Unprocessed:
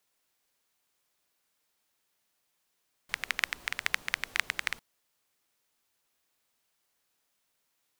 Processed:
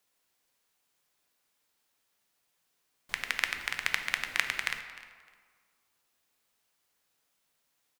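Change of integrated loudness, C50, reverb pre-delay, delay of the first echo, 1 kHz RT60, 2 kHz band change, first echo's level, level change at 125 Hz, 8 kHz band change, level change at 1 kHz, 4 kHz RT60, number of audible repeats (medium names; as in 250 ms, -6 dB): +1.0 dB, 8.0 dB, 3 ms, 305 ms, 1.8 s, +1.0 dB, -18.5 dB, +1.0 dB, +0.5 dB, +1.0 dB, 1.2 s, 2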